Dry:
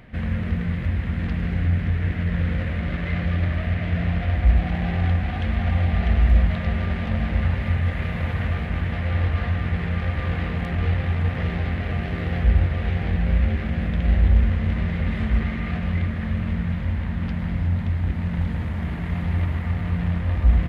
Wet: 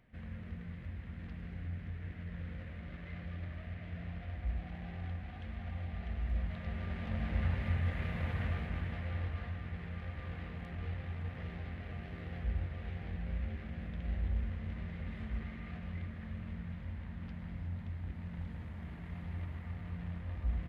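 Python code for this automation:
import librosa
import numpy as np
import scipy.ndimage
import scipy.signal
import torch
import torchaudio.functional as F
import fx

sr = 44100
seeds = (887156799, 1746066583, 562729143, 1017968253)

y = fx.gain(x, sr, db=fx.line((6.16, -20.0), (7.44, -11.0), (8.48, -11.0), (9.6, -18.0)))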